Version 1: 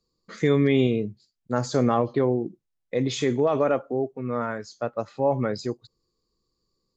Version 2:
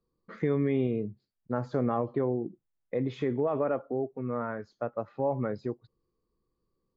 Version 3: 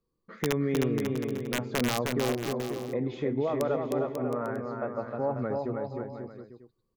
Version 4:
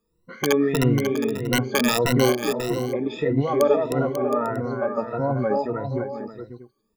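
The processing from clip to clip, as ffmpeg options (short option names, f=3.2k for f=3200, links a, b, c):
-af "lowpass=1.7k,acompressor=threshold=-31dB:ratio=1.5,volume=-1.5dB"
-af "aeval=exprs='(mod(7.5*val(0)+1,2)-1)/7.5':c=same,aecho=1:1:310|542.5|716.9|847.7|945.7:0.631|0.398|0.251|0.158|0.1,volume=-1dB"
-af "afftfilt=real='re*pow(10,23/40*sin(2*PI*(2*log(max(b,1)*sr/1024/100)/log(2)-(1.6)*(pts-256)/sr)))':imag='im*pow(10,23/40*sin(2*PI*(2*log(max(b,1)*sr/1024/100)/log(2)-(1.6)*(pts-256)/sr)))':win_size=1024:overlap=0.75,volume=3dB"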